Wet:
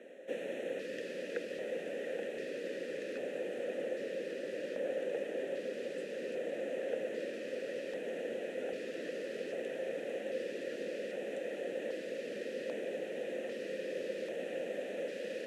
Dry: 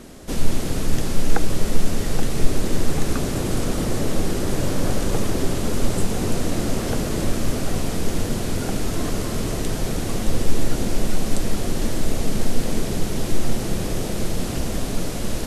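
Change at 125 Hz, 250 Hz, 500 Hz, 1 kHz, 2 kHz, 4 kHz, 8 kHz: -35.5 dB, -20.0 dB, -7.0 dB, -21.5 dB, -10.0 dB, -19.0 dB, -28.5 dB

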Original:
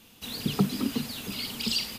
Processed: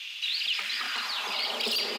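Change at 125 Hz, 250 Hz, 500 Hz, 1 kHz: under -25 dB, -19.0 dB, -1.0 dB, +6.0 dB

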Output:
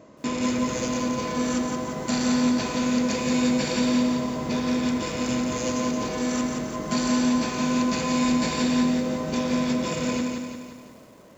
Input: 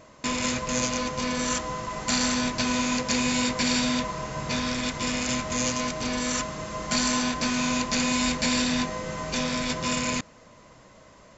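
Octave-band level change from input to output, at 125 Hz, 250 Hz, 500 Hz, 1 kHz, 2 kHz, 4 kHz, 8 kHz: +1.5 dB, +5.5 dB, +4.0 dB, -0.5 dB, -3.5 dB, -4.5 dB, no reading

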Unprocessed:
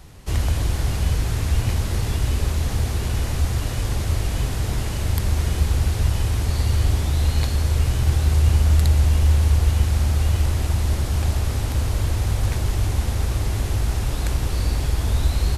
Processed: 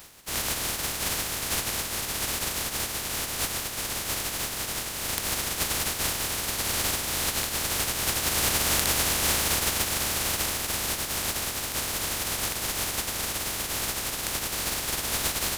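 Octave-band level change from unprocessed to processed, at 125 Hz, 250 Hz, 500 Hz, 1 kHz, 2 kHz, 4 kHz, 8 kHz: -20.5 dB, -7.0 dB, -2.5 dB, +1.0 dB, +4.0 dB, +5.5 dB, +8.0 dB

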